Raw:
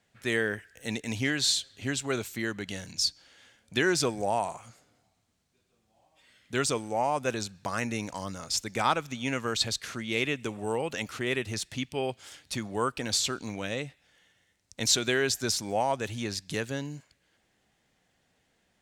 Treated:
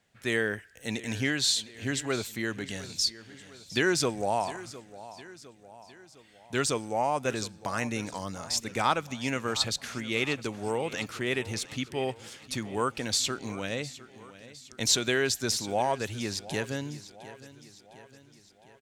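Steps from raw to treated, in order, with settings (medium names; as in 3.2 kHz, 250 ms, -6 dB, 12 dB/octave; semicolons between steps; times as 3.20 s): feedback delay 708 ms, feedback 53%, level -17 dB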